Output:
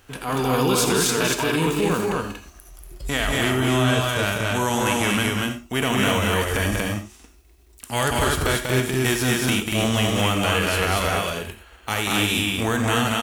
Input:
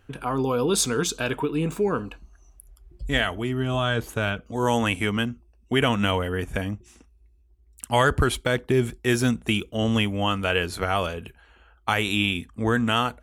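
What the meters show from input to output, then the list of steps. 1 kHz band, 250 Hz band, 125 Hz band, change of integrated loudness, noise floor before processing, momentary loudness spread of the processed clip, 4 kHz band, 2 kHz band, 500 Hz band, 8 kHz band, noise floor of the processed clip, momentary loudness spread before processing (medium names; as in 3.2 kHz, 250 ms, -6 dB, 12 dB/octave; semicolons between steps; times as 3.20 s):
+3.0 dB, +2.5 dB, +3.0 dB, +3.0 dB, -58 dBFS, 8 LU, +4.5 dB, +3.5 dB, +2.0 dB, +6.5 dB, -51 dBFS, 8 LU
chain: formants flattened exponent 0.6; compression, threshold -23 dBFS, peak gain reduction 8.5 dB; loudspeakers at several distances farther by 65 m -6 dB, 81 m -2 dB; gated-style reverb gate 110 ms rising, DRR 8 dB; transient shaper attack -8 dB, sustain -2 dB; trim +5 dB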